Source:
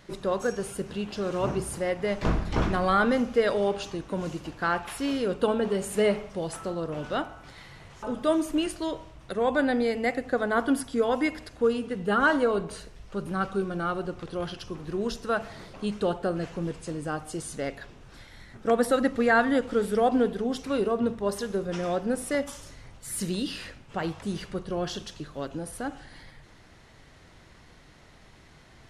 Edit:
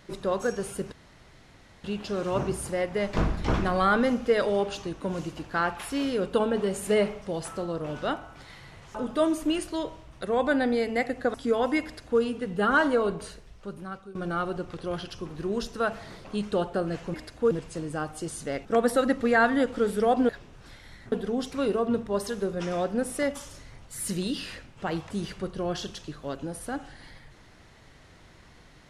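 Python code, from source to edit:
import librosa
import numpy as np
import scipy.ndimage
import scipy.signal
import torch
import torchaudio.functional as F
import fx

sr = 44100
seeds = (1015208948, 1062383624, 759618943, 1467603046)

y = fx.edit(x, sr, fx.insert_room_tone(at_s=0.92, length_s=0.92),
    fx.cut(start_s=10.42, length_s=0.41),
    fx.duplicate(start_s=11.33, length_s=0.37, to_s=16.63),
    fx.fade_out_to(start_s=12.67, length_s=0.97, floor_db=-20.0),
    fx.move(start_s=17.77, length_s=0.83, to_s=20.24), tone=tone)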